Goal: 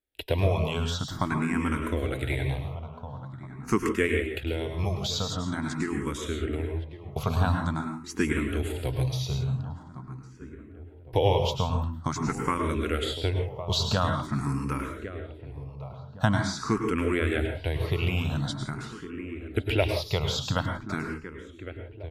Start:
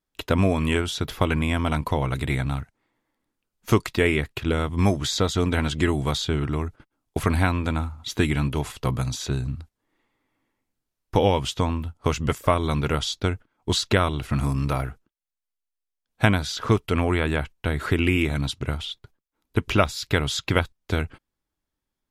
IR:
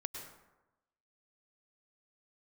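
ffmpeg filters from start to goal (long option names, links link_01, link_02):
-filter_complex "[0:a]asettb=1/sr,asplit=3[link_01][link_02][link_03];[link_01]atrim=end=4.054[link_04];[link_02]atrim=start=4.05:end=6.44,asetpts=PTS-STARTPTS,afade=type=in:duration=0.004:curve=qsin,afade=type=out:start_time=2.386:duration=0.004:curve=qsin,acompressor=threshold=-21dB:ratio=6[link_05];[link_03]atrim=start=6.436[link_06];[link_04][link_05]acrossfade=duration=0.004:curve1=hsin:curve2=qsin[link_07];[link_07][link_06]acrossfade=duration=0.004:curve1=qsin:curve2=hsin,asplit=2[link_08][link_09];[link_09]adelay=1109,lowpass=frequency=1300:poles=1,volume=-12dB,asplit=2[link_10][link_11];[link_11]adelay=1109,lowpass=frequency=1300:poles=1,volume=0.46,asplit=2[link_12][link_13];[link_13]adelay=1109,lowpass=frequency=1300:poles=1,volume=0.46,asplit=2[link_14][link_15];[link_15]adelay=1109,lowpass=frequency=1300:poles=1,volume=0.46,asplit=2[link_16][link_17];[link_17]adelay=1109,lowpass=frequency=1300:poles=1,volume=0.46[link_18];[link_08][link_10][link_12][link_14][link_16][link_18]amix=inputs=6:normalize=0[link_19];[1:a]atrim=start_sample=2205,afade=type=out:start_time=0.23:duration=0.01,atrim=end_sample=10584[link_20];[link_19][link_20]afir=irnorm=-1:irlink=0,asplit=2[link_21][link_22];[link_22]afreqshift=0.46[link_23];[link_21][link_23]amix=inputs=2:normalize=1"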